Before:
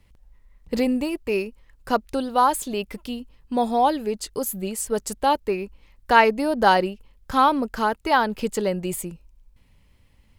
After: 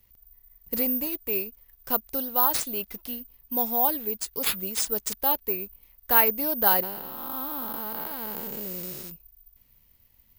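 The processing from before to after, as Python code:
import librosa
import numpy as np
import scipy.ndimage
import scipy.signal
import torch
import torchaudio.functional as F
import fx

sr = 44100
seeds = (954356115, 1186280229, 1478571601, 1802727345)

y = fx.spec_blur(x, sr, span_ms=498.0, at=(6.82, 9.09), fade=0.02)
y = fx.high_shelf(y, sr, hz=6300.0, db=10.0)
y = (np.kron(y[::3], np.eye(3)[0]) * 3)[:len(y)]
y = y * librosa.db_to_amplitude(-9.0)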